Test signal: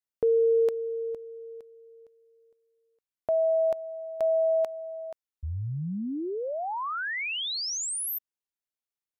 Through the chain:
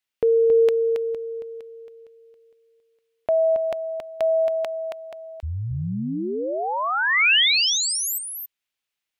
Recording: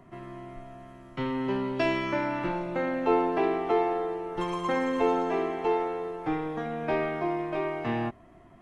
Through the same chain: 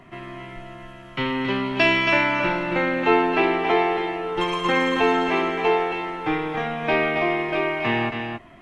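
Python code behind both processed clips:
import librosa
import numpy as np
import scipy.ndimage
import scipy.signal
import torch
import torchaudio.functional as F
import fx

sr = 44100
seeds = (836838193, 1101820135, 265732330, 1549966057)

p1 = fx.peak_eq(x, sr, hz=2700.0, db=11.0, octaves=1.6)
p2 = p1 + fx.echo_single(p1, sr, ms=274, db=-6.0, dry=0)
y = p2 * librosa.db_to_amplitude(4.0)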